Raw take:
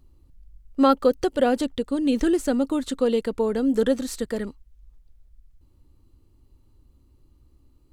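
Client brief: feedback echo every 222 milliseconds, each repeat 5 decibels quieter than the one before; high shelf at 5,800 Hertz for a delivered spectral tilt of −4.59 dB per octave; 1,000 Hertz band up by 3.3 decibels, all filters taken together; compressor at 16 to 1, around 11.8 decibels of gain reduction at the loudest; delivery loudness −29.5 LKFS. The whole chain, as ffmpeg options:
ffmpeg -i in.wav -af "equalizer=frequency=1000:width_type=o:gain=5,highshelf=frequency=5800:gain=-6,acompressor=threshold=-23dB:ratio=16,aecho=1:1:222|444|666|888|1110|1332|1554:0.562|0.315|0.176|0.0988|0.0553|0.031|0.0173,volume=-1.5dB" out.wav

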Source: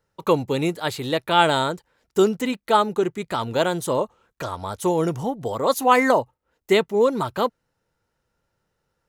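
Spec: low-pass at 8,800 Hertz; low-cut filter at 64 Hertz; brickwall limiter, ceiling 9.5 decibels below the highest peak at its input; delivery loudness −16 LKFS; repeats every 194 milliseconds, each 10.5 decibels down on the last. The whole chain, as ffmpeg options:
ffmpeg -i in.wav -af "highpass=64,lowpass=8800,alimiter=limit=-12dB:level=0:latency=1,aecho=1:1:194|388|582:0.299|0.0896|0.0269,volume=8.5dB" out.wav

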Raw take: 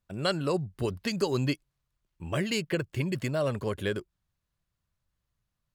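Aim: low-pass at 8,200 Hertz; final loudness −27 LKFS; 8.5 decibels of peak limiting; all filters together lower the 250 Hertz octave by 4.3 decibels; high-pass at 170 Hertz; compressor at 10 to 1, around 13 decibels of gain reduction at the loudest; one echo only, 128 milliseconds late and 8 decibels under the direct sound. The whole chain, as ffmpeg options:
ffmpeg -i in.wav -af "highpass=170,lowpass=8200,equalizer=frequency=250:width_type=o:gain=-4.5,acompressor=threshold=-36dB:ratio=10,alimiter=level_in=9dB:limit=-24dB:level=0:latency=1,volume=-9dB,aecho=1:1:128:0.398,volume=17dB" out.wav

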